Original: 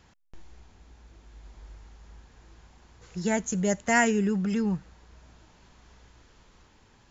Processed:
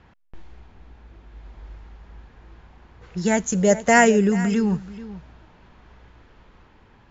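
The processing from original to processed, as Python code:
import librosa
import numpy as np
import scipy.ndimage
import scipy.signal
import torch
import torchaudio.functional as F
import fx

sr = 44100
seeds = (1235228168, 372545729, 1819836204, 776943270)

p1 = x + fx.echo_single(x, sr, ms=434, db=-16.0, dry=0)
p2 = fx.env_lowpass(p1, sr, base_hz=2400.0, full_db=-25.5)
p3 = fx.peak_eq(p2, sr, hz=530.0, db=8.0, octaves=0.62, at=(3.55, 4.3))
y = F.gain(torch.from_numpy(p3), 6.0).numpy()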